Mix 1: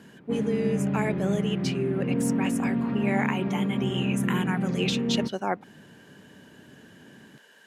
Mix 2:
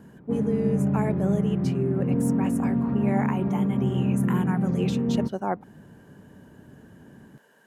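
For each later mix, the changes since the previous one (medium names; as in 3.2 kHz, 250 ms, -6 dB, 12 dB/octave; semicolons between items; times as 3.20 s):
master: remove frequency weighting D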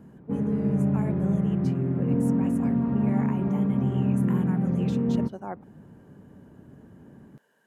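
speech -8.5 dB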